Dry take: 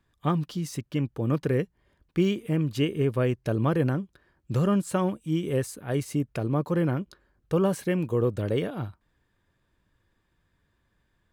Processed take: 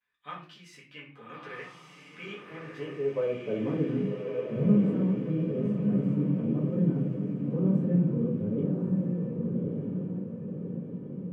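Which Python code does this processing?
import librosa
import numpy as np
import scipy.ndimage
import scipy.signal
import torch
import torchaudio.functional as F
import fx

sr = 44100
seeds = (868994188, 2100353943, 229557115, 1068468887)

p1 = fx.vibrato(x, sr, rate_hz=0.48, depth_cents=38.0)
p2 = fx.filter_sweep_bandpass(p1, sr, from_hz=2200.0, to_hz=220.0, start_s=2.1, end_s=4.0, q=2.1)
p3 = p2 + fx.echo_diffused(p2, sr, ms=1204, feedback_pct=53, wet_db=-3, dry=0)
p4 = fx.room_shoebox(p3, sr, seeds[0], volume_m3=31.0, walls='mixed', distance_m=1.2)
y = p4 * 10.0 ** (-6.5 / 20.0)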